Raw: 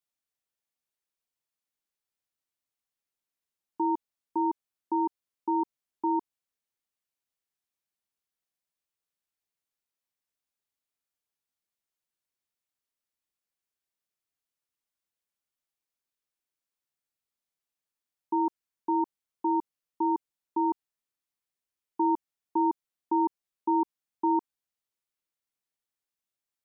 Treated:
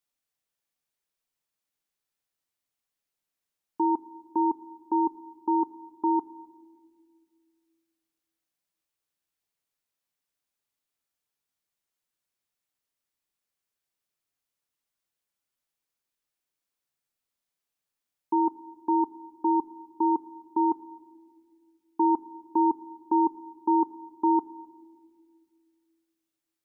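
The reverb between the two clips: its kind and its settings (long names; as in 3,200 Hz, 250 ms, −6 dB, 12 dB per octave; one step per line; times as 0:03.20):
rectangular room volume 2,500 cubic metres, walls mixed, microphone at 0.35 metres
level +3 dB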